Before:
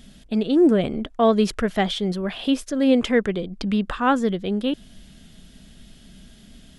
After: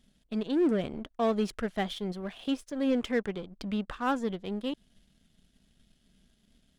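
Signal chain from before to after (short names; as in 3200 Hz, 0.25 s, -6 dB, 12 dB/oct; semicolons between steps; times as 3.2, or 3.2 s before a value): power-law curve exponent 1.4; soft clip -15 dBFS, distortion -14 dB; gain -4.5 dB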